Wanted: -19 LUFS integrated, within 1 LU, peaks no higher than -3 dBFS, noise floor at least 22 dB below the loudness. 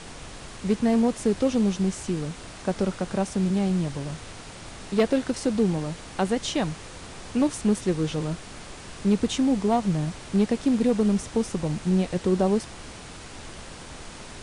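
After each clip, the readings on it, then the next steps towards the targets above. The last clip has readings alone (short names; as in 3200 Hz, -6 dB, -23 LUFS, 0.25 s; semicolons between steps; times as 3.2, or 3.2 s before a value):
clipped 0.3%; flat tops at -14.0 dBFS; noise floor -42 dBFS; noise floor target -48 dBFS; loudness -25.5 LUFS; peak -14.0 dBFS; loudness target -19.0 LUFS
-> clip repair -14 dBFS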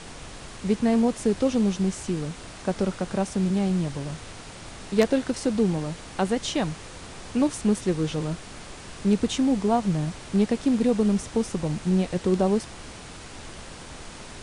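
clipped 0.0%; noise floor -42 dBFS; noise floor target -48 dBFS
-> noise print and reduce 6 dB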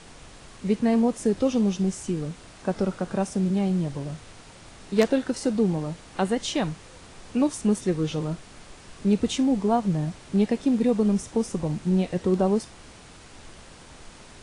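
noise floor -48 dBFS; loudness -25.5 LUFS; peak -5.5 dBFS; loudness target -19.0 LUFS
-> gain +6.5 dB; limiter -3 dBFS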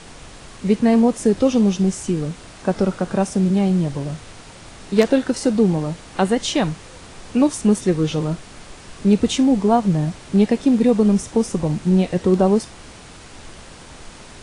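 loudness -19.0 LUFS; peak -3.0 dBFS; noise floor -41 dBFS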